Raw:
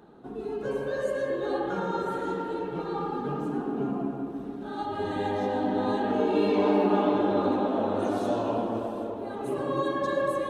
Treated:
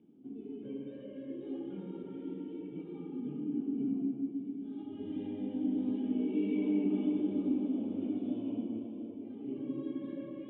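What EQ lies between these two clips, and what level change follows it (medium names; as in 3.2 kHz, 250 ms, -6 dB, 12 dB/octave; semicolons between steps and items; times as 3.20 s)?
cascade formant filter i; high-pass 94 Hz; 0.0 dB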